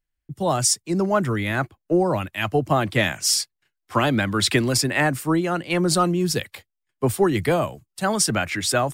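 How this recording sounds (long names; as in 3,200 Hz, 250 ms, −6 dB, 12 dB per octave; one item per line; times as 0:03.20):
background noise floor −80 dBFS
spectral slope −4.0 dB per octave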